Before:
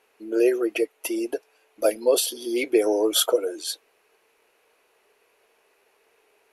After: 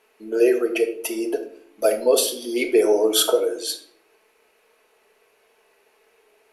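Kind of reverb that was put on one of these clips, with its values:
rectangular room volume 920 cubic metres, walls furnished, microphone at 1.5 metres
level +1.5 dB

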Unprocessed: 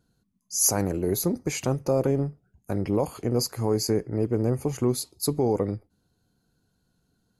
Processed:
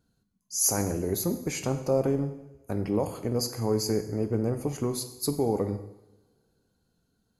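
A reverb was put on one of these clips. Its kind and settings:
coupled-rooms reverb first 0.87 s, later 2.9 s, from −28 dB, DRR 7.5 dB
level −3 dB

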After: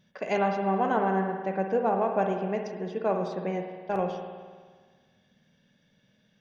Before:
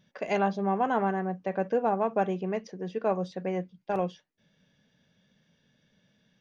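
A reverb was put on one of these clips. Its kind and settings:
spring reverb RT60 1.6 s, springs 52 ms, chirp 75 ms, DRR 4 dB

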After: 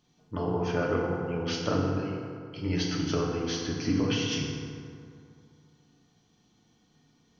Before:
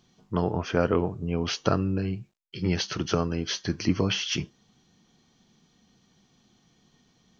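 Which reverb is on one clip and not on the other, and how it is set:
feedback delay network reverb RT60 2.4 s, low-frequency decay 1×, high-frequency decay 0.5×, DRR −3 dB
level −7 dB

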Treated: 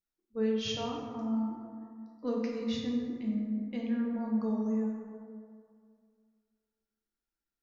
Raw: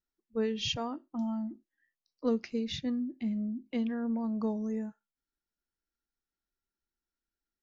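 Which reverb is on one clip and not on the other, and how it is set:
dense smooth reverb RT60 2.2 s, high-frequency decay 0.4×, DRR −2 dB
level −5 dB

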